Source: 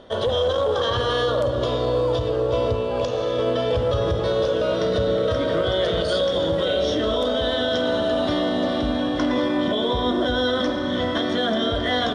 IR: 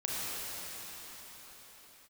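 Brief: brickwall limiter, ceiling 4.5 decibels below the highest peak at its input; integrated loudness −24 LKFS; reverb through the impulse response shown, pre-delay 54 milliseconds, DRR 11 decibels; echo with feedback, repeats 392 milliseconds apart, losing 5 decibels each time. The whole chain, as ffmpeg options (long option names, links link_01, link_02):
-filter_complex "[0:a]alimiter=limit=-17dB:level=0:latency=1,aecho=1:1:392|784|1176|1568|1960|2352|2744:0.562|0.315|0.176|0.0988|0.0553|0.031|0.0173,asplit=2[link_01][link_02];[1:a]atrim=start_sample=2205,adelay=54[link_03];[link_02][link_03]afir=irnorm=-1:irlink=0,volume=-18dB[link_04];[link_01][link_04]amix=inputs=2:normalize=0,volume=-1dB"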